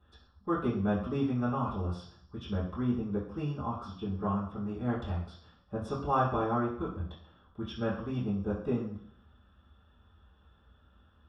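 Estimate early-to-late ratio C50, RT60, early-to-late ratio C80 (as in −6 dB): 5.0 dB, 0.60 s, 9.0 dB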